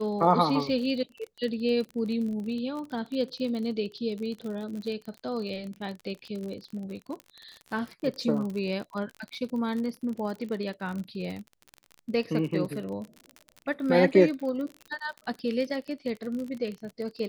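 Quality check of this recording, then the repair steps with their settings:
crackle 41/s -34 dBFS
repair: de-click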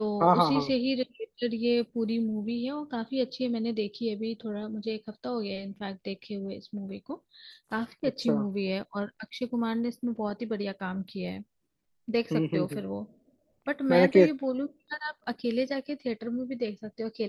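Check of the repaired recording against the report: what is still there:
none

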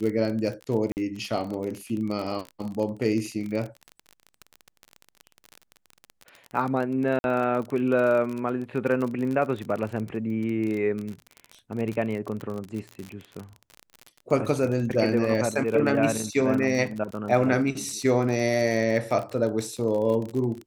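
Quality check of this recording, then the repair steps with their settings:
crackle 39/s -30 dBFS
0.92–0.97 gap 49 ms
7.19–7.24 gap 51 ms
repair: de-click; interpolate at 0.92, 49 ms; interpolate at 7.19, 51 ms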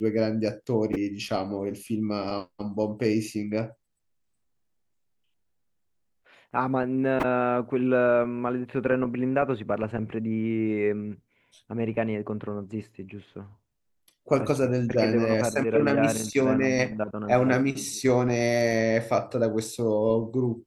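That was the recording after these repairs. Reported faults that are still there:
none

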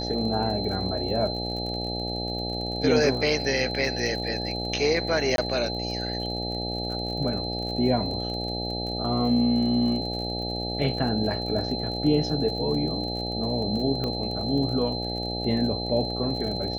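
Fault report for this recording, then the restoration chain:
buzz 60 Hz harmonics 14 -32 dBFS
crackle 42/s -34 dBFS
tone 4100 Hz -32 dBFS
5.36–5.38 gap 22 ms
14.04 pop -18 dBFS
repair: de-click; de-hum 60 Hz, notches 14; notch 4100 Hz, Q 30; interpolate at 5.36, 22 ms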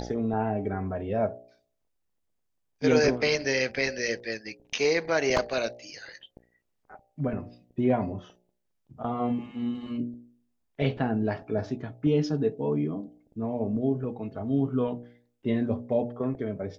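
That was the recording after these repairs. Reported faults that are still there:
none

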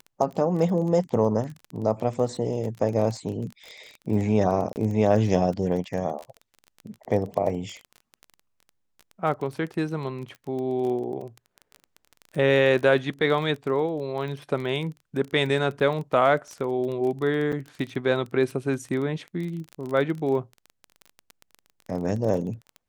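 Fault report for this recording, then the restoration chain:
crackle 22/s -31 dBFS
4.73–4.76 gap 29 ms
17.52–17.53 gap 6.7 ms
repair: de-click; interpolate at 4.73, 29 ms; interpolate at 17.52, 6.7 ms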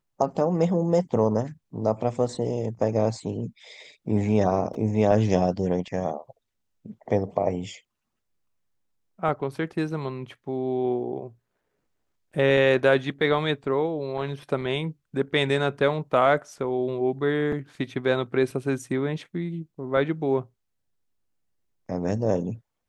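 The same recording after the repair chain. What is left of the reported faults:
none

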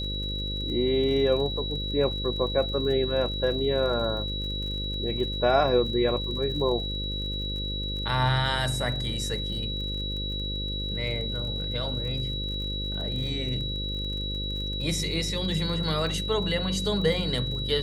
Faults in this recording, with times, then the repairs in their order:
buzz 50 Hz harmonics 11 -33 dBFS
crackle 41/s -36 dBFS
tone 3900 Hz -32 dBFS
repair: de-click; de-hum 50 Hz, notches 11; notch 3900 Hz, Q 30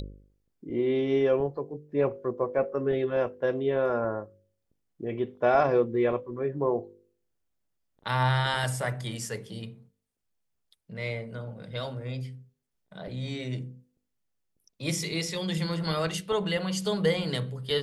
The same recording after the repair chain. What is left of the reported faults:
none

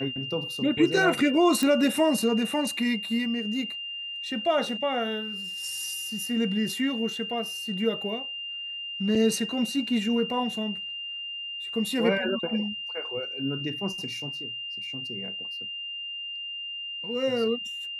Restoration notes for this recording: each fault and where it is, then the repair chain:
tone 2800 Hz -33 dBFS
1.63 pop
9.15 gap 4.4 ms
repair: de-click; notch 2800 Hz, Q 30; interpolate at 9.15, 4.4 ms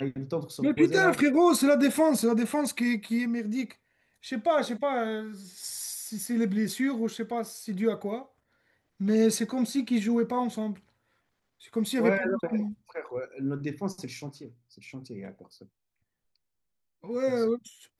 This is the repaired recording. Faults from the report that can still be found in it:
none

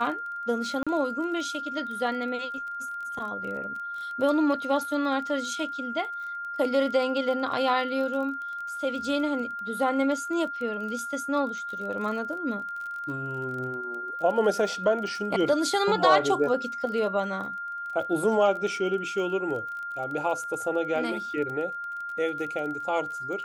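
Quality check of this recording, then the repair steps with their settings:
crackle 23/s -35 dBFS
tone 1400 Hz -32 dBFS
0.83–0.87 gap 36 ms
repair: de-click; notch 1400 Hz, Q 30; interpolate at 0.83, 36 ms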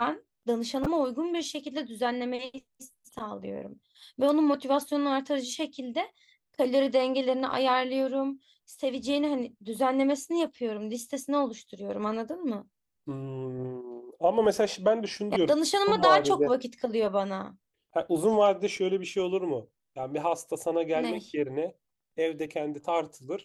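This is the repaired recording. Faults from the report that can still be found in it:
none

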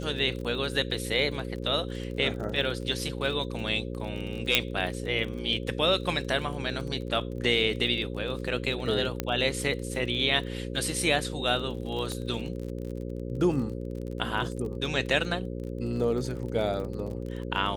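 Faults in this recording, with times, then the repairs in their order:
buzz 60 Hz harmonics 9 -35 dBFS
crackle 35/s -35 dBFS
4.55 pop -5 dBFS
9.2 pop -12 dBFS
12.12 pop -21 dBFS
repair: de-click; de-hum 60 Hz, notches 9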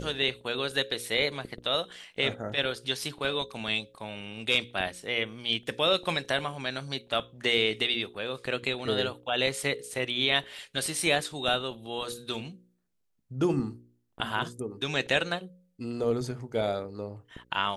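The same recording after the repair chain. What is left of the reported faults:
4.55 pop
12.12 pop

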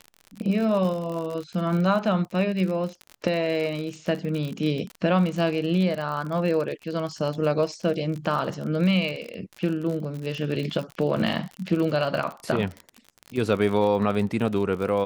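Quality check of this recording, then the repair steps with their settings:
crackle 51/s -30 dBFS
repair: de-click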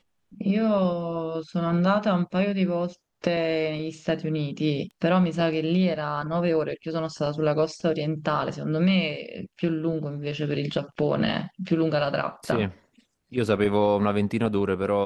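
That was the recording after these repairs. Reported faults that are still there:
none

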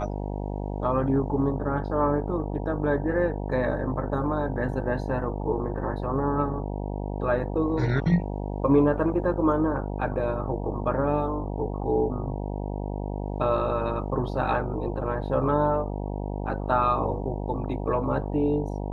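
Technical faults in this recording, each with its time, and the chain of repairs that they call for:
buzz 50 Hz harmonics 19 -31 dBFS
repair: de-hum 50 Hz, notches 19

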